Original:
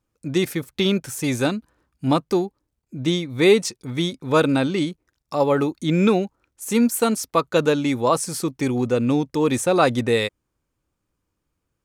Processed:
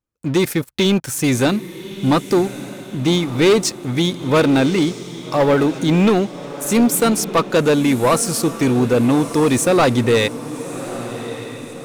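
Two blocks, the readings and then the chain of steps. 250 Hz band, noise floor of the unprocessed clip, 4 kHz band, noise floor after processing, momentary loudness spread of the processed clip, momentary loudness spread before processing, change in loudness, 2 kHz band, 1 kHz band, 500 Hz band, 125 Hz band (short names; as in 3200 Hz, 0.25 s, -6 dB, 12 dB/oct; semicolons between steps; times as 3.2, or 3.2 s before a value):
+5.0 dB, -78 dBFS, +4.5 dB, -35 dBFS, 13 LU, 9 LU, +4.0 dB, +4.5 dB, +3.5 dB, +4.0 dB, +5.5 dB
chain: sample leveller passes 3; diffused feedback echo 1.202 s, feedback 48%, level -13 dB; gain -4 dB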